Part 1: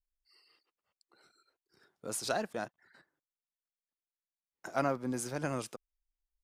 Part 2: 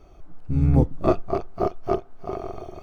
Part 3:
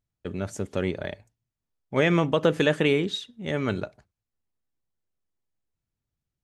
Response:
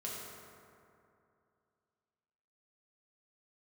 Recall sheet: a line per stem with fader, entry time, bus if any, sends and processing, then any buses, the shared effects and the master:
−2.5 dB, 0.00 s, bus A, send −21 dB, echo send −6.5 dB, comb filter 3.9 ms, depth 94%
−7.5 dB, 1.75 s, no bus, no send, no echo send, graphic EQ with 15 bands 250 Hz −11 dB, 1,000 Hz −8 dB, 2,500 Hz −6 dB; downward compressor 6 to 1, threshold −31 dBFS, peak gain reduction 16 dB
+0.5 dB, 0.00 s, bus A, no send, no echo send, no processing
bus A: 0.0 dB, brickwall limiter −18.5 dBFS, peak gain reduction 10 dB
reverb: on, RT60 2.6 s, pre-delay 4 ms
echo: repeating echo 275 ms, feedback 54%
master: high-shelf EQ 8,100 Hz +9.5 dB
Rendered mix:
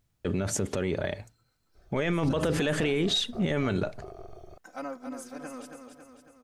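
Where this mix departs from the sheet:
stem 1 −2.5 dB → −9.5 dB
stem 3 +0.5 dB → +11.5 dB
master: missing high-shelf EQ 8,100 Hz +9.5 dB

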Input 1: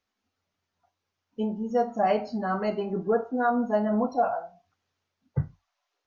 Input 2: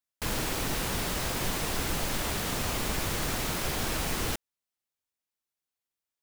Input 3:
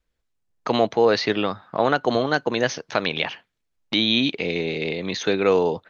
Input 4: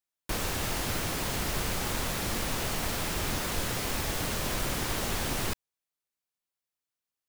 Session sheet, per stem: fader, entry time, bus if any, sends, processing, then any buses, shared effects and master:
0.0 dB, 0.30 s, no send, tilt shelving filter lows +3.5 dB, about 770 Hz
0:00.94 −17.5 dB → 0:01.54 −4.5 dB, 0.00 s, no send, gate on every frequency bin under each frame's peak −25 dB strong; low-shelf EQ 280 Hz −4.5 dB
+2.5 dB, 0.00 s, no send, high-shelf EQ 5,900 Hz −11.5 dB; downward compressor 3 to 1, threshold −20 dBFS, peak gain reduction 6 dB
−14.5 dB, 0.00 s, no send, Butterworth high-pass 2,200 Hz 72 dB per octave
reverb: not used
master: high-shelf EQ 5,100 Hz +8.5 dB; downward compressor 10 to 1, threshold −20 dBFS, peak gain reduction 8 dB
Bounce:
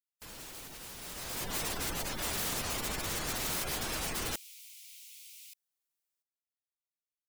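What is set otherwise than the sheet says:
stem 1: muted
stem 3: muted
stem 4 −14.5 dB → −21.5 dB

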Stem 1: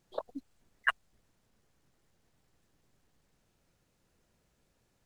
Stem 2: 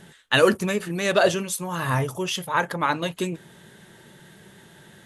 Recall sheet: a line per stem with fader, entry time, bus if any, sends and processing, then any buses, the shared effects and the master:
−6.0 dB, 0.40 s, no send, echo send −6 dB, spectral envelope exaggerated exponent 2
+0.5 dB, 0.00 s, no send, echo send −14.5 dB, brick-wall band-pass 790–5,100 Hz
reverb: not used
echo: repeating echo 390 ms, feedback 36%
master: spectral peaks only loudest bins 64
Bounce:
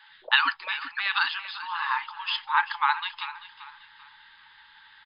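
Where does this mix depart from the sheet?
stem 1: entry 0.40 s → 0.10 s
master: missing spectral peaks only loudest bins 64

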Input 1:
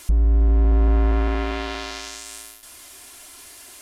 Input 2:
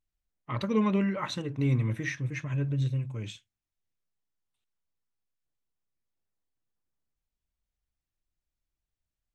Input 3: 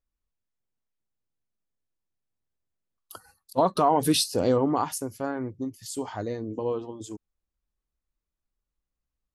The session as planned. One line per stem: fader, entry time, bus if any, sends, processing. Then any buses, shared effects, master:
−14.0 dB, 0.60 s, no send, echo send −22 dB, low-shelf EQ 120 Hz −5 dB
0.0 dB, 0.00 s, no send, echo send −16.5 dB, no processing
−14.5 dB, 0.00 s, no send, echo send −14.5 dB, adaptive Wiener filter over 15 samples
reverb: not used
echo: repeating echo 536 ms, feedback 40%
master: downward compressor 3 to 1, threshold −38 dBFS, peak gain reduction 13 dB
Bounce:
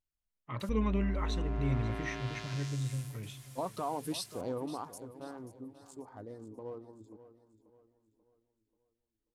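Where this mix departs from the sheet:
stem 2 0.0 dB → −6.5 dB
master: missing downward compressor 3 to 1, threshold −38 dBFS, peak gain reduction 13 dB

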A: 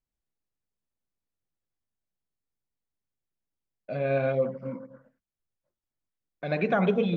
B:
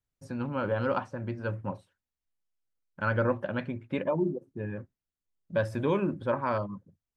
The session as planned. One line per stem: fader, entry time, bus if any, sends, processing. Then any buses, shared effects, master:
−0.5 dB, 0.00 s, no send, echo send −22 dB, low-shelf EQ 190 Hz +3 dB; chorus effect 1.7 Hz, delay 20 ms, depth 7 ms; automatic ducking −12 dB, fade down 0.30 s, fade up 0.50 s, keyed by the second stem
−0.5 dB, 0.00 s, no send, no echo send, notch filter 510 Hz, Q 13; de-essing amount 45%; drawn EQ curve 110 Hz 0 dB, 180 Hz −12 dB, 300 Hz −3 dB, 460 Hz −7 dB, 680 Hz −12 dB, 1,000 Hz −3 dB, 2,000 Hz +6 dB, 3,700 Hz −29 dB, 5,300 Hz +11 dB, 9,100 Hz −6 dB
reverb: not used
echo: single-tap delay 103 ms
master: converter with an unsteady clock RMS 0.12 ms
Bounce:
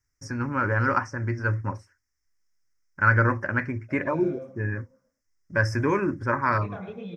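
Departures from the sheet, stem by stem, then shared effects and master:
stem B −0.5 dB → +9.5 dB
master: missing converter with an unsteady clock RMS 0.12 ms

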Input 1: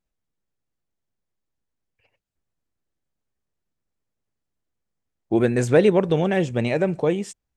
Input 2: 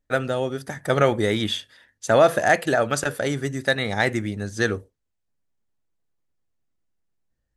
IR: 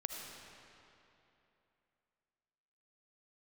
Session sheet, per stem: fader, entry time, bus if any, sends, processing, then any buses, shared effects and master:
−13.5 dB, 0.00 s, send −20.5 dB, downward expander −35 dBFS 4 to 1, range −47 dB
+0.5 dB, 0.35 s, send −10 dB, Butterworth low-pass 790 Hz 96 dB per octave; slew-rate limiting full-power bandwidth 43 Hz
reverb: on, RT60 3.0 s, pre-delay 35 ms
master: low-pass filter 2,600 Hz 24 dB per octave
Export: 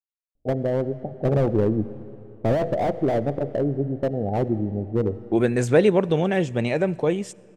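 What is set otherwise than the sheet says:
stem 1 −13.5 dB → −1.5 dB
master: missing low-pass filter 2,600 Hz 24 dB per octave

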